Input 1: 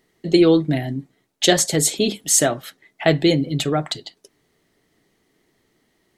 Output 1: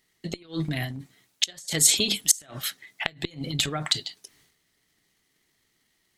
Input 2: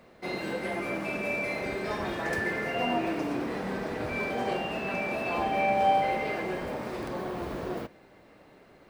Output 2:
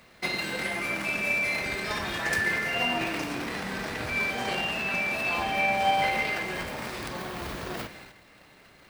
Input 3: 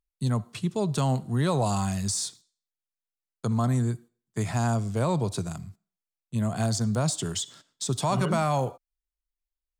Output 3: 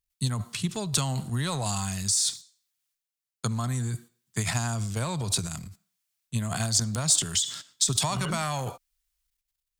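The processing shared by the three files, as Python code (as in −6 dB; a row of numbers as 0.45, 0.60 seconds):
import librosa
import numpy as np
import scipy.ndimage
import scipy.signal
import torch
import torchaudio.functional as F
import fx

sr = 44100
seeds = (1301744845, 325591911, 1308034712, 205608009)

y = fx.transient(x, sr, attack_db=7, sustain_db=11)
y = fx.gate_flip(y, sr, shuts_db=-2.0, range_db=-27)
y = fx.tone_stack(y, sr, knobs='5-5-5')
y = y * 10.0 ** (-30 / 20.0) / np.sqrt(np.mean(np.square(y)))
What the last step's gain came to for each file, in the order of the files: +5.0, +14.5, +10.0 decibels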